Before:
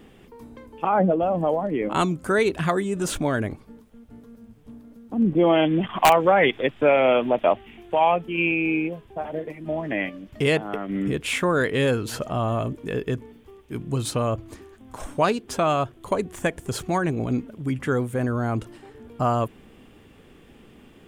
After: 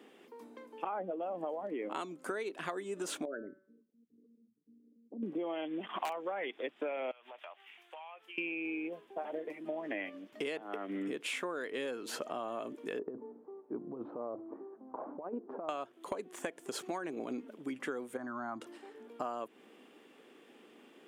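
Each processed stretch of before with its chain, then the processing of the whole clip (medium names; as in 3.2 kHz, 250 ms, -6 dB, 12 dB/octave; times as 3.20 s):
3.25–5.23 s: resonances exaggerated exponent 3 + feedback comb 190 Hz, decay 0.57 s
7.11–8.38 s: high-pass 1.2 kHz + compression 10:1, threshold -39 dBFS
12.99–15.69 s: low-pass 1 kHz 24 dB/octave + compressor with a negative ratio -27 dBFS, ratio -0.5
18.17–18.61 s: distance through air 130 m + static phaser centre 1.1 kHz, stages 4
whole clip: high-pass 270 Hz 24 dB/octave; treble shelf 11 kHz -6 dB; compression 10:1, threshold -29 dBFS; trim -5.5 dB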